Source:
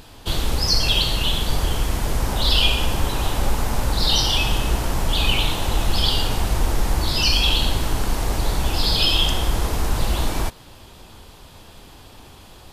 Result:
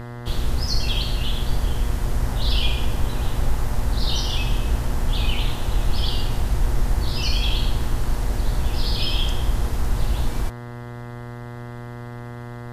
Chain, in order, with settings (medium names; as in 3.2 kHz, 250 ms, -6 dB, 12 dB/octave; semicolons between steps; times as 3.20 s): mains buzz 120 Hz, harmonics 17, -30 dBFS -4 dB/octave; bass shelf 160 Hz +8.5 dB; trim -8 dB